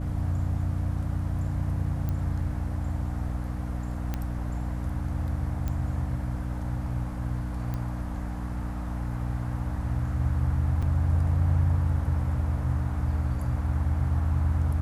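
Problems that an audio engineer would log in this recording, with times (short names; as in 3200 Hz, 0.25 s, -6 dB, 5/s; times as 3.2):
hum 60 Hz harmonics 5 -32 dBFS
2.09 pop -20 dBFS
4.14 pop -17 dBFS
5.68 pop -19 dBFS
7.74 pop -21 dBFS
10.82–10.83 gap 5.6 ms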